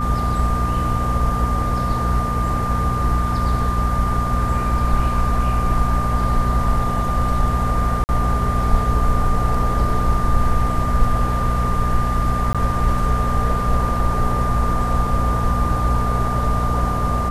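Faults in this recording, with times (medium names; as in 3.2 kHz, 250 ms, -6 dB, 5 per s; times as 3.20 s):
hum 60 Hz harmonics 4 -22 dBFS
whine 1.2 kHz -23 dBFS
8.04–8.09 s: dropout 49 ms
12.53–12.55 s: dropout 16 ms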